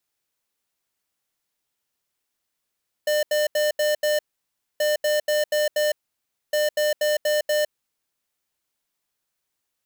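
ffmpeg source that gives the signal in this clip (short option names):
-f lavfi -i "aevalsrc='0.0891*(2*lt(mod(600*t,1),0.5)-1)*clip(min(mod(mod(t,1.73),0.24),0.16-mod(mod(t,1.73),0.24))/0.005,0,1)*lt(mod(t,1.73),1.2)':d=5.19:s=44100"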